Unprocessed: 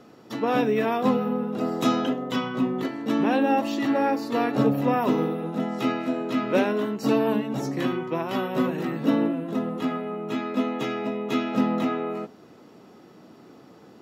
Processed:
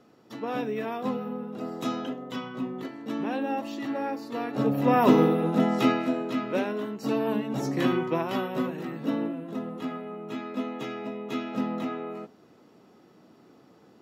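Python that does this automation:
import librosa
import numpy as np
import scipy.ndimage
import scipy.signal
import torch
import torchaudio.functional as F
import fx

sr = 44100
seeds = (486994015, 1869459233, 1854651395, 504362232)

y = fx.gain(x, sr, db=fx.line((4.47, -8.0), (5.07, 4.5), (5.72, 4.5), (6.55, -6.0), (7.08, -6.0), (7.98, 2.5), (8.76, -6.5)))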